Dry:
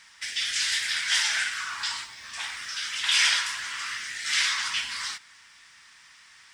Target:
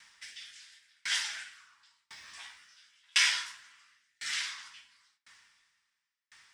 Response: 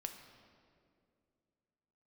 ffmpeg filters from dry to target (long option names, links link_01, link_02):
-filter_complex "[0:a]asettb=1/sr,asplit=3[link_01][link_02][link_03];[link_01]atrim=end=2.264[link_04];[link_02]atrim=start=2.26:end=3.52,asetpts=PTS-STARTPTS,afade=type=in:duration=0.004:curve=qsin,afade=type=out:start_time=1.256:duration=0.004:curve=qsin,asplit=2[link_05][link_06];[link_06]adelay=15,volume=-2.5dB[link_07];[link_05][link_07]amix=inputs=2:normalize=0,atrim=end_sample=55566[link_08];[link_03]atrim=start=3.516[link_09];[link_04][link_08]acrossfade=duration=0.004:curve1=hsin:curve2=qsin[link_10];[link_10][link_09]acrossfade=duration=0.004:curve1=qsin:curve2=hsin[link_11];[1:a]atrim=start_sample=2205,atrim=end_sample=3528[link_12];[link_11][link_12]afir=irnorm=-1:irlink=0,aeval=exprs='val(0)*pow(10,-40*if(lt(mod(0.95*n/s,1),2*abs(0.95)/1000),1-mod(0.95*n/s,1)/(2*abs(0.95)/1000),(mod(0.95*n/s,1)-2*abs(0.95)/1000)/(1-2*abs(0.95)/1000))/20)':channel_layout=same"